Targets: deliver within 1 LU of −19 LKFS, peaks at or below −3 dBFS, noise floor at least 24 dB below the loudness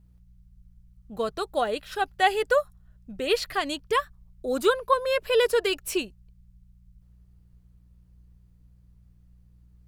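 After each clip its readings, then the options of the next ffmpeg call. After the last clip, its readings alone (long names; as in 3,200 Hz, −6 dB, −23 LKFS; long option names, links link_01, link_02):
mains hum 60 Hz; hum harmonics up to 180 Hz; level of the hum −54 dBFS; integrated loudness −26.0 LKFS; sample peak −9.0 dBFS; target loudness −19.0 LKFS
→ -af "bandreject=frequency=60:width_type=h:width=4,bandreject=frequency=120:width_type=h:width=4,bandreject=frequency=180:width_type=h:width=4"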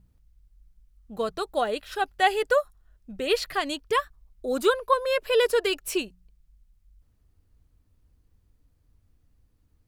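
mains hum none found; integrated loudness −26.0 LKFS; sample peak −9.0 dBFS; target loudness −19.0 LKFS
→ -af "volume=7dB,alimiter=limit=-3dB:level=0:latency=1"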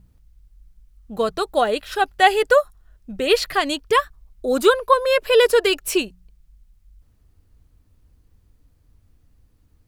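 integrated loudness −19.0 LKFS; sample peak −3.0 dBFS; background noise floor −60 dBFS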